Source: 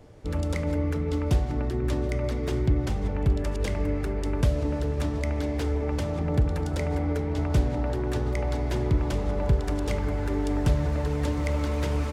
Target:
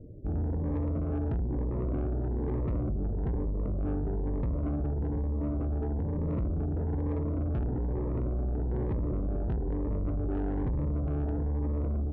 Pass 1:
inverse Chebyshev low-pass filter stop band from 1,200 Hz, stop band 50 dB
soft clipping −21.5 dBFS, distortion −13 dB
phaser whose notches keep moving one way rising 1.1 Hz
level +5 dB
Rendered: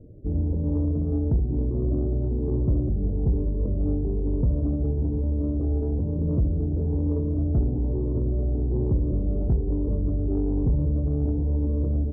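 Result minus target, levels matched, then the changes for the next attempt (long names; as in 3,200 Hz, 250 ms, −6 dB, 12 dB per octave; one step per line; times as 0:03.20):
soft clipping: distortion −7 dB
change: soft clipping −32.5 dBFS, distortion −6 dB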